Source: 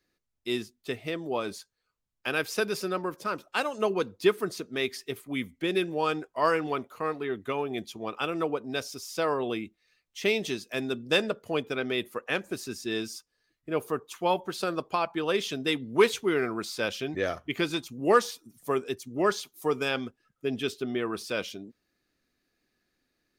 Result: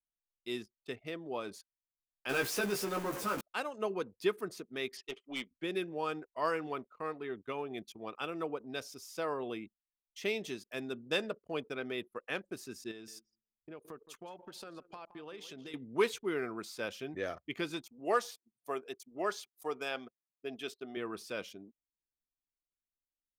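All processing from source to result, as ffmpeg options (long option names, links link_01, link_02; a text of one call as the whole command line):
ffmpeg -i in.wav -filter_complex "[0:a]asettb=1/sr,asplit=3[link_01][link_02][link_03];[link_01]atrim=end=2.294[link_04];[link_02]atrim=start=2.29:end=3.41,asetpts=PTS-STARTPTS,afade=type=in:duration=0.004:curve=qsin,afade=type=out:start_time=1.116:duration=0.004:curve=qsin,aeval=exprs='val(0)+0.5*0.0398*sgn(val(0))':channel_layout=same,asplit=2[link_05][link_06];[link_06]adelay=15,volume=-3dB[link_07];[link_05][link_07]amix=inputs=2:normalize=0,atrim=end_sample=49392[link_08];[link_03]atrim=start=3.406[link_09];[link_04][link_08]acrossfade=duration=0.004:curve1=hsin:curve2=qsin[link_10];[link_10][link_09]acrossfade=duration=0.004:curve1=qsin:curve2=hsin,asettb=1/sr,asplit=3[link_11][link_12][link_13];[link_11]atrim=end=4.974[link_14];[link_12]atrim=start=4.97:end=5.51,asetpts=PTS-STARTPTS,afade=type=in:duration=0.004:curve=qsin,afade=type=out:start_time=0.536:duration=0.004:curve=qsin,highpass=380,equalizer=frequency=490:width_type=q:width=4:gain=-5,equalizer=frequency=1000:width_type=q:width=4:gain=-4,equalizer=frequency=1500:width_type=q:width=4:gain=-8,equalizer=frequency=3000:width_type=q:width=4:gain=9,equalizer=frequency=5700:width_type=q:width=4:gain=-3,lowpass=frequency=6000:width=0.5412,lowpass=frequency=6000:width=1.3066,acontrast=45,aeval=exprs='(tanh(12.6*val(0)+0.25)-tanh(0.25))/12.6':channel_layout=same[link_15];[link_13]atrim=start=5.506[link_16];[link_14][link_15]acrossfade=duration=0.004:curve1=hsin:curve2=qsin[link_17];[link_17][link_16]acrossfade=duration=0.004:curve1=qsin:curve2=hsin,asettb=1/sr,asplit=3[link_18][link_19][link_20];[link_18]atrim=end=12.914[link_21];[link_19]atrim=start=12.91:end=15.74,asetpts=PTS-STARTPTS,afade=type=in:duration=0.004:curve=qsin,afade=type=out:start_time=2.826:duration=0.004:curve=qsin,acompressor=threshold=-36dB:ratio=6:attack=3.2:release=140:knee=1:detection=peak,aecho=1:1:168|336|504:0.224|0.0716|0.0229,atrim=end_sample=124803[link_22];[link_20]atrim=start=15.736[link_23];[link_21][link_22]acrossfade=duration=0.004:curve1=hsin:curve2=qsin[link_24];[link_24][link_23]acrossfade=duration=0.004:curve1=qsin:curve2=hsin,asettb=1/sr,asplit=3[link_25][link_26][link_27];[link_25]atrim=end=17.834[link_28];[link_26]atrim=start=17.83:end=20.97,asetpts=PTS-STARTPTS,afade=type=in:duration=0.004:curve=qsin,afade=type=out:start_time=3.136:duration=0.004:curve=qsin,highpass=frequency=410:poles=1,equalizer=frequency=690:width=6:gain=7.5[link_29];[link_27]atrim=start=20.966[link_30];[link_28][link_29]acrossfade=duration=0.004:curve1=hsin:curve2=qsin[link_31];[link_31][link_30]acrossfade=duration=0.004:curve1=qsin:curve2=hsin,lowshelf=frequency=100:gain=-6,anlmdn=0.0251,adynamicequalizer=threshold=0.00447:dfrequency=4100:dqfactor=1.1:tfrequency=4100:tqfactor=1.1:attack=5:release=100:ratio=0.375:range=3:mode=cutabove:tftype=bell,volume=-8dB" out.wav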